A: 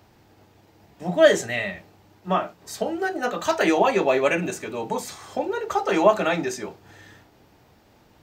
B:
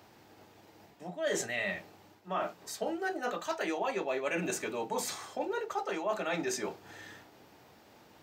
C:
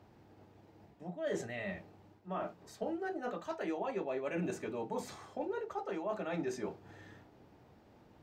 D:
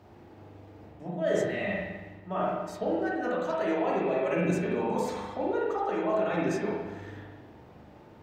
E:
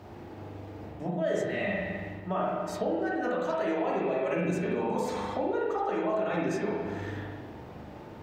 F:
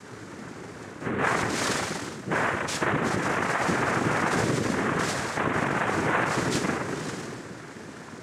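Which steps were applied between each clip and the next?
high-pass 250 Hz 6 dB/octave; reverse; compression 6:1, threshold -31 dBFS, peak gain reduction 20 dB; reverse
tilt EQ -3 dB/octave; trim -6.5 dB
spring tank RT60 1.1 s, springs 40/54 ms, chirp 45 ms, DRR -3 dB; trim +5 dB
compression 2.5:1, threshold -37 dBFS, peak gain reduction 10.5 dB; trim +7 dB
resonant low-pass 5 kHz, resonance Q 7.9; noise-vocoded speech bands 3; trim +3.5 dB

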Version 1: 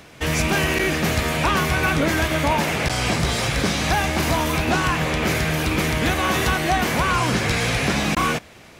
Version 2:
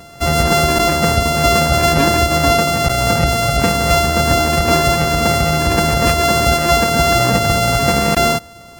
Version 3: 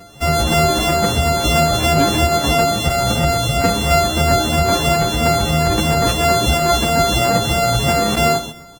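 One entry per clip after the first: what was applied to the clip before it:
sorted samples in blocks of 64 samples; spectral gate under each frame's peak -25 dB strong; trim +7 dB
on a send: feedback delay 128 ms, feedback 21%, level -9.5 dB; on the sum: endless flanger 8.2 ms +3 Hz; trim +1 dB

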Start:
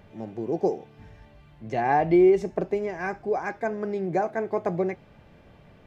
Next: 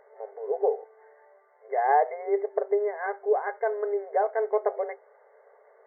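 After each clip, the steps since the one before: FFT band-pass 390–2200 Hz; tilt shelf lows +4.5 dB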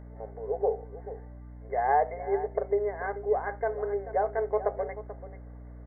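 hum 60 Hz, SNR 14 dB; delay 436 ms -14 dB; trim -2.5 dB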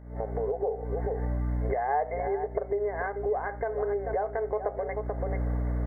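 recorder AGC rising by 78 dB/s; trim -3.5 dB

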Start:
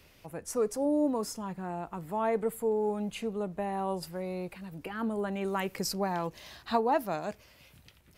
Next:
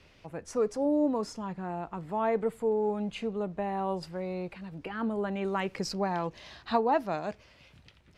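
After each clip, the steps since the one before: low-pass 5.1 kHz 12 dB/octave; trim +1 dB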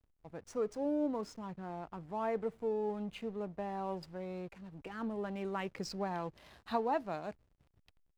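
hysteresis with a dead band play -44.5 dBFS; trim -7 dB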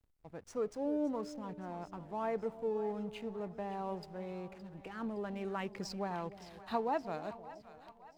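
two-band feedback delay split 760 Hz, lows 303 ms, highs 567 ms, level -14 dB; trim -1 dB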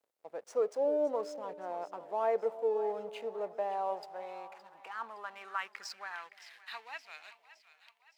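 high-pass sweep 530 Hz -> 2.3 kHz, 3.42–7.01 s; trim +1.5 dB

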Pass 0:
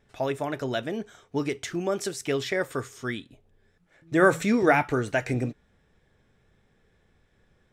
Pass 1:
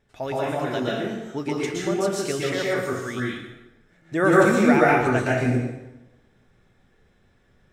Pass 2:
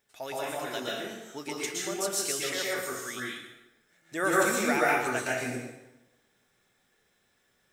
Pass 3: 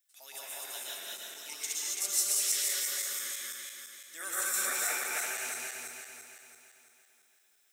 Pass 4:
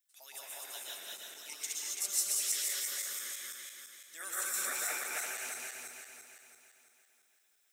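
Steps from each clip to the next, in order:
plate-style reverb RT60 0.99 s, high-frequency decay 0.8×, pre-delay 105 ms, DRR -5.5 dB; trim -2.5 dB
RIAA curve recording; trim -6.5 dB
backward echo that repeats 168 ms, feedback 69%, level 0 dB; differentiator
harmonic-percussive split percussive +6 dB; trim -7 dB

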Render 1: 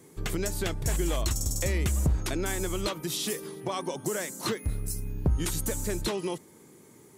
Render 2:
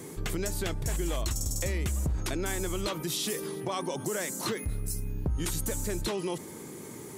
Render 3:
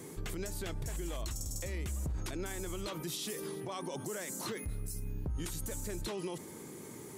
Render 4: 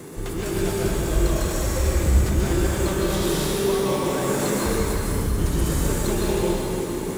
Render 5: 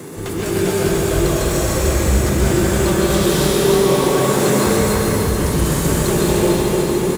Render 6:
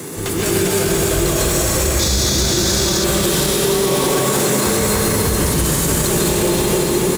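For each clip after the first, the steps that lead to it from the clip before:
level flattener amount 50%; trim -6 dB
peak limiter -25 dBFS, peak gain reduction 6.5 dB; trim -4.5 dB
in parallel at -2 dB: sample-and-hold 14×; on the sum: plate-style reverb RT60 3.9 s, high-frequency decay 0.85×, pre-delay 110 ms, DRR -7.5 dB; trim +4 dB
high-pass 75 Hz 12 dB/octave; feedback delay 298 ms, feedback 60%, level -5 dB; trim +6 dB
treble shelf 2.6 kHz +7.5 dB; painted sound noise, 1.99–3.05 s, 3.3–7.1 kHz -18 dBFS; peak limiter -9 dBFS, peak gain reduction 9 dB; trim +2 dB

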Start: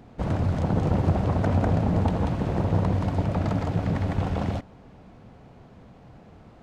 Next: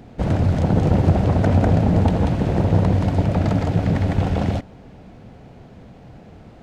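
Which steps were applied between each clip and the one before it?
peaking EQ 1.1 kHz -5.5 dB 0.64 oct; trim +6.5 dB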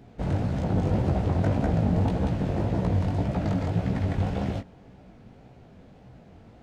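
chorus 1.8 Hz, delay 15 ms, depth 7.4 ms; trim -4.5 dB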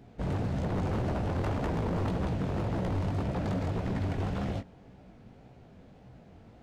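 wavefolder -22 dBFS; trim -3 dB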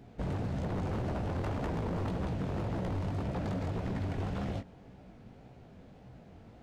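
compression, threshold -31 dBFS, peak gain reduction 4 dB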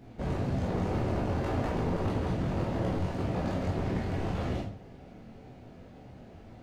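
reverberation RT60 0.40 s, pre-delay 15 ms, DRR -2.5 dB

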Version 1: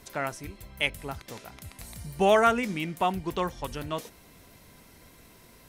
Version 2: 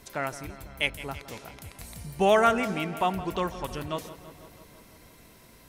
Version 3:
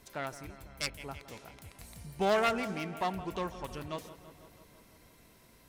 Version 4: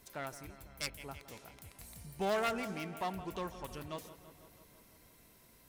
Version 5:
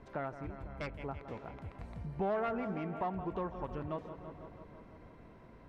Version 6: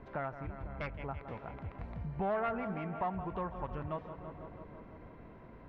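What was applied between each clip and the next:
filtered feedback delay 166 ms, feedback 70%, low-pass 4.7 kHz, level -14.5 dB
self-modulated delay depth 0.18 ms; trim -6.5 dB
treble shelf 9.6 kHz +9 dB; in parallel at -7.5 dB: overload inside the chain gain 31 dB; on the sum: trim -7 dB
low-pass 1.3 kHz 12 dB/octave; compression 2:1, threshold -50 dBFS, peak gain reduction 11 dB; trim +10.5 dB
low-pass 2.9 kHz 12 dB/octave; dynamic bell 340 Hz, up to -7 dB, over -51 dBFS, Q 1; trim +3 dB

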